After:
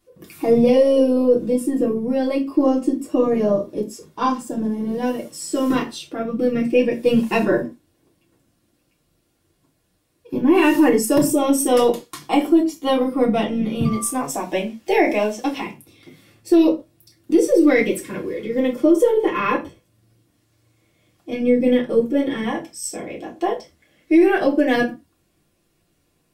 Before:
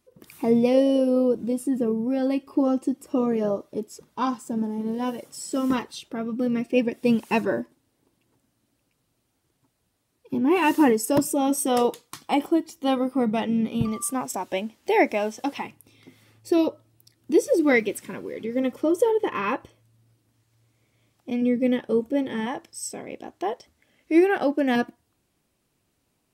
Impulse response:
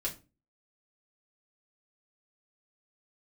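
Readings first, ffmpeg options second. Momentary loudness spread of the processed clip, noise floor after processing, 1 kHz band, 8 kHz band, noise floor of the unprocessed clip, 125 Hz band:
13 LU, −66 dBFS, +3.0 dB, +4.5 dB, −73 dBFS, +6.0 dB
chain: -filter_complex "[0:a]aeval=exprs='0.398*(cos(1*acos(clip(val(0)/0.398,-1,1)))-cos(1*PI/2))+0.00251*(cos(6*acos(clip(val(0)/0.398,-1,1)))-cos(6*PI/2))':channel_layout=same[link_01];[1:a]atrim=start_sample=2205,afade=type=out:start_time=0.19:duration=0.01,atrim=end_sample=8820[link_02];[link_01][link_02]afir=irnorm=-1:irlink=0,alimiter=level_in=8.5dB:limit=-1dB:release=50:level=0:latency=1,volume=-5.5dB"

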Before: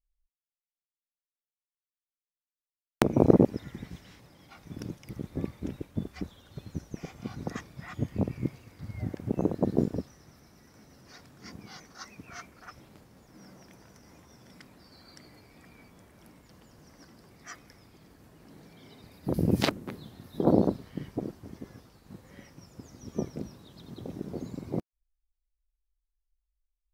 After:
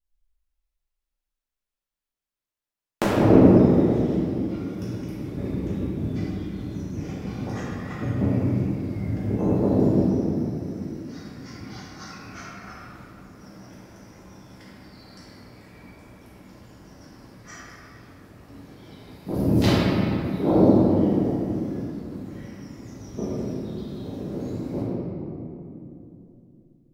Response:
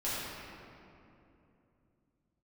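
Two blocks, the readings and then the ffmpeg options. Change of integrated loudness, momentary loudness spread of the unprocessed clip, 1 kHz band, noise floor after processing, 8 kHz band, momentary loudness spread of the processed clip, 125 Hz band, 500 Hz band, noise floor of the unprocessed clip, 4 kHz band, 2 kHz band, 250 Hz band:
+7.5 dB, 23 LU, +7.0 dB, below −85 dBFS, can't be measured, 22 LU, +9.0 dB, +7.5 dB, below −85 dBFS, +5.0 dB, +6.0 dB, +9.5 dB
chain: -filter_complex "[1:a]atrim=start_sample=2205[link_01];[0:a][link_01]afir=irnorm=-1:irlink=0"

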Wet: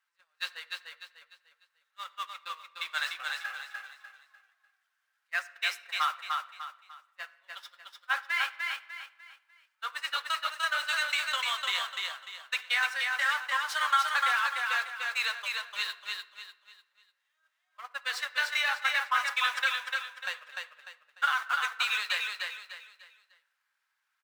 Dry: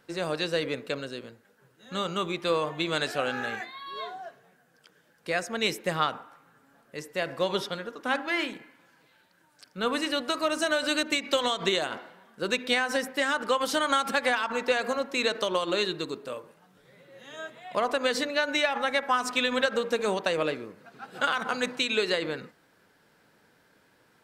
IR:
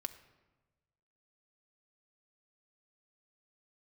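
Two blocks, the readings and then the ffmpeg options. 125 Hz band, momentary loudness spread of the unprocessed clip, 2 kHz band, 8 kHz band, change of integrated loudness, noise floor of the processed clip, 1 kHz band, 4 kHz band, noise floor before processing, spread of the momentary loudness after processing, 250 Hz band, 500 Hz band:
below −40 dB, 14 LU, +1.0 dB, −4.5 dB, −2.0 dB, −80 dBFS, −2.0 dB, −2.0 dB, −64 dBFS, 18 LU, below −40 dB, −23.5 dB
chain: -filter_complex "[0:a]aeval=exprs='val(0)+0.5*0.0299*sgn(val(0))':channel_layout=same,highpass=frequency=1200:width=0.5412,highpass=frequency=1200:width=1.3066,agate=range=-41dB:threshold=-29dB:ratio=16:detection=peak,highshelf=frequency=2400:gain=-11.5,flanger=delay=1:depth=7:regen=-58:speed=1.5:shape=sinusoidal,aecho=1:1:298|596|894|1192:0.668|0.227|0.0773|0.0263,asplit=2[link_01][link_02];[1:a]atrim=start_sample=2205[link_03];[link_02][link_03]afir=irnorm=-1:irlink=0,volume=5dB[link_04];[link_01][link_04]amix=inputs=2:normalize=0"

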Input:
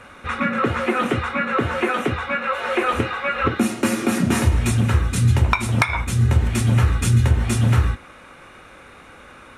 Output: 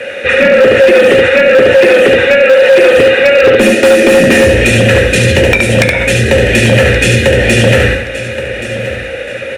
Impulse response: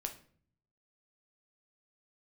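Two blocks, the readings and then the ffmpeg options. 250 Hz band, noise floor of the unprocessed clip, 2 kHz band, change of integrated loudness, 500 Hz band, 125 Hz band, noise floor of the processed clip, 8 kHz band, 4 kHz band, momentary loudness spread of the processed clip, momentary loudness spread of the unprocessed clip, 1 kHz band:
+9.5 dB, −45 dBFS, +16.0 dB, +13.5 dB, +22.5 dB, +5.0 dB, −21 dBFS, +10.5 dB, +17.0 dB, 12 LU, 5 LU, +4.5 dB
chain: -filter_complex "[0:a]crystalizer=i=3.5:c=0,asplit=3[link_01][link_02][link_03];[link_01]bandpass=frequency=530:width_type=q:width=8,volume=0dB[link_04];[link_02]bandpass=frequency=1840:width_type=q:width=8,volume=-6dB[link_05];[link_03]bandpass=frequency=2480:width_type=q:width=8,volume=-9dB[link_06];[link_04][link_05][link_06]amix=inputs=3:normalize=0,asplit=2[link_07][link_08];[link_08]aecho=0:1:15|71:0.237|0.596[link_09];[link_07][link_09]amix=inputs=2:normalize=0,acrossover=split=520|6800[link_10][link_11][link_12];[link_10]acompressor=threshold=-32dB:ratio=4[link_13];[link_11]acompressor=threshold=-37dB:ratio=4[link_14];[link_12]acompressor=threshold=-54dB:ratio=4[link_15];[link_13][link_14][link_15]amix=inputs=3:normalize=0,lowshelf=frequency=270:gain=7,asoftclip=type=hard:threshold=-27dB,asplit=2[link_16][link_17];[link_17]aecho=0:1:1125|2250|3375:0.188|0.0527|0.0148[link_18];[link_16][link_18]amix=inputs=2:normalize=0,apsyclip=31dB,volume=-1.5dB"

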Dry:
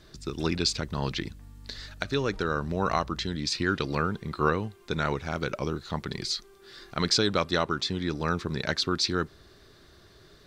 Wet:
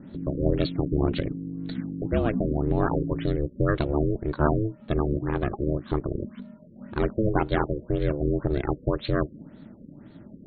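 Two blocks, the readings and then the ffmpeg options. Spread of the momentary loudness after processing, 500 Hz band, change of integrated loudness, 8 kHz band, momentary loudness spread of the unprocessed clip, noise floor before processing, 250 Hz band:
19 LU, +4.0 dB, +2.0 dB, below −40 dB, 11 LU, −55 dBFS, +5.0 dB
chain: -af "aemphasis=mode=reproduction:type=bsi,aeval=exprs='val(0)*sin(2*PI*220*n/s)':channel_layout=same,afftfilt=real='re*lt(b*sr/1024,550*pow(4500/550,0.5+0.5*sin(2*PI*1.9*pts/sr)))':imag='im*lt(b*sr/1024,550*pow(4500/550,0.5+0.5*sin(2*PI*1.9*pts/sr)))':win_size=1024:overlap=0.75,volume=2.5dB"

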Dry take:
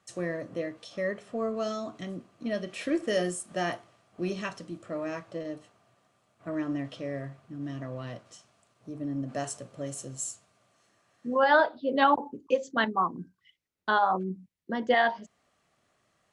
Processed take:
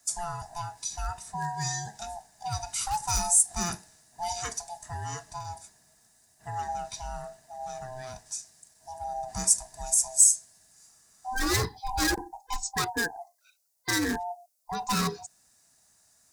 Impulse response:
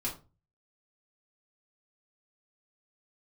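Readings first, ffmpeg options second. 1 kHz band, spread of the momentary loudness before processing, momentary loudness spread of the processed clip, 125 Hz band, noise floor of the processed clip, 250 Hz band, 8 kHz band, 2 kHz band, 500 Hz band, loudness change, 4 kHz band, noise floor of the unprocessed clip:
−3.0 dB, 17 LU, 19 LU, +3.0 dB, −65 dBFS, −4.5 dB, +18.0 dB, −3.5 dB, −10.0 dB, +2.0 dB, +5.0 dB, −72 dBFS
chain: -af "afftfilt=real='real(if(lt(b,1008),b+24*(1-2*mod(floor(b/24),2)),b),0)':imag='imag(if(lt(b,1008),b+24*(1-2*mod(floor(b/24),2)),b),0)':win_size=2048:overlap=0.75,asoftclip=type=hard:threshold=-22dB,aexciter=amount=6.3:drive=7.7:freq=4500,volume=-2dB"

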